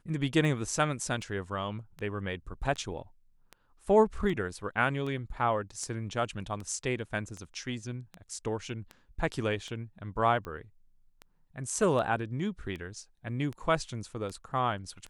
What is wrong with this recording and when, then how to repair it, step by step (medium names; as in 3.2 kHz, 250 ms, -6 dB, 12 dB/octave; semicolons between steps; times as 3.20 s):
tick 78 rpm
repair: de-click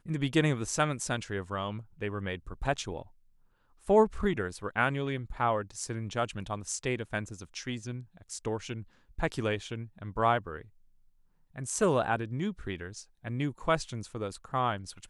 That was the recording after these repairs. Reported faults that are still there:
nothing left